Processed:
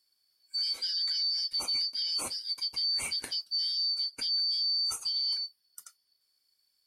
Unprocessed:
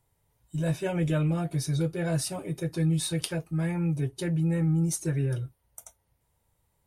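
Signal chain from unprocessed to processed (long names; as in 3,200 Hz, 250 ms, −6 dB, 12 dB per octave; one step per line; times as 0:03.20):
band-splitting scrambler in four parts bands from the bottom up 4321
brickwall limiter −22 dBFS, peak gain reduction 6.5 dB
level −2 dB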